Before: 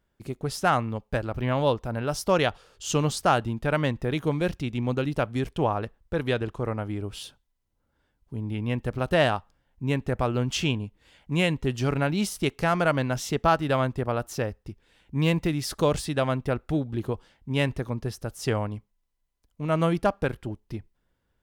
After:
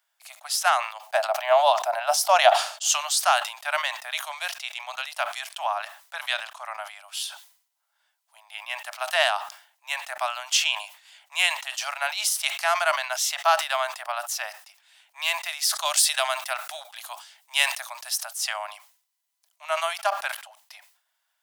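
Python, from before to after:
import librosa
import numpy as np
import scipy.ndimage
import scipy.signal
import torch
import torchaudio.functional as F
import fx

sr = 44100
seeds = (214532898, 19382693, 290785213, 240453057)

y = fx.peak_eq(x, sr, hz=670.0, db=14.5, octaves=0.86, at=(1.06, 2.91))
y = fx.high_shelf(y, sr, hz=3600.0, db=8.5, at=(15.85, 18.19))
y = scipy.signal.sosfilt(scipy.signal.butter(16, 630.0, 'highpass', fs=sr, output='sos'), y)
y = fx.high_shelf(y, sr, hz=2500.0, db=11.5)
y = fx.sustainer(y, sr, db_per_s=110.0)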